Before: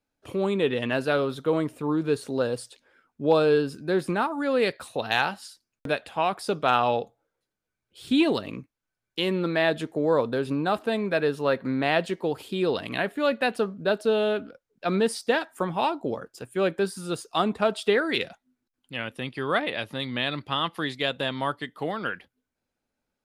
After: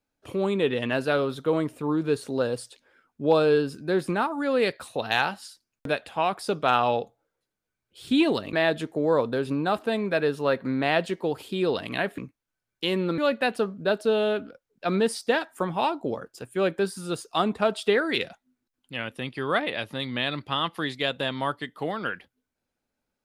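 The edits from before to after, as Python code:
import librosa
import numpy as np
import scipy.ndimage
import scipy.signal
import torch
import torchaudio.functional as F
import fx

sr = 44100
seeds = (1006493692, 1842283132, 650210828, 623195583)

y = fx.edit(x, sr, fx.move(start_s=8.53, length_s=1.0, to_s=13.18), tone=tone)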